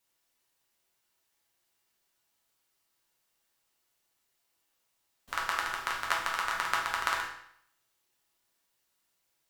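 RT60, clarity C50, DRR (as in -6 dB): 0.70 s, 4.0 dB, -4.0 dB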